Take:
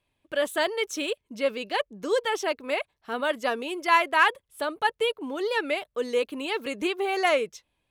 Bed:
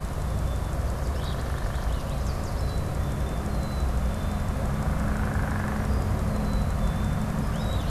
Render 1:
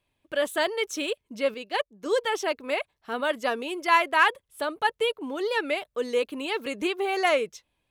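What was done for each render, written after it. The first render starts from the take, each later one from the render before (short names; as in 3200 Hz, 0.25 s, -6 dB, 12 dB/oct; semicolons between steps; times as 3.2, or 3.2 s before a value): 1.54–2.06 upward expander, over -44 dBFS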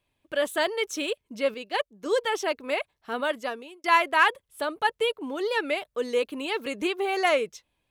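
3.22–3.84 fade out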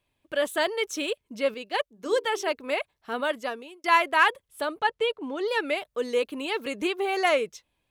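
1.92–2.5 notches 50/100/150/200/250/300/350/400 Hz; 4.79–5.48 air absorption 63 m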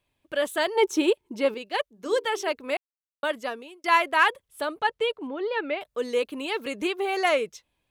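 0.75–1.57 small resonant body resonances 360/880 Hz, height 18 dB -> 15 dB; 2.77–3.23 mute; 5.27–5.81 air absorption 270 m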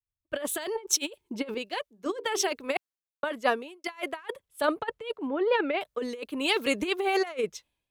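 negative-ratio compressor -28 dBFS, ratio -0.5; three-band expander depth 100%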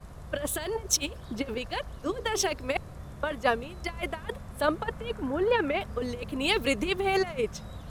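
add bed -15 dB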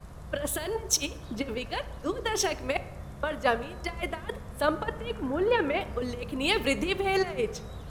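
plate-style reverb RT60 1.3 s, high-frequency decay 0.45×, DRR 13 dB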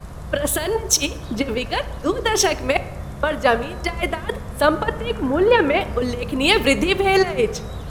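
gain +10 dB; limiter -3 dBFS, peak gain reduction 3 dB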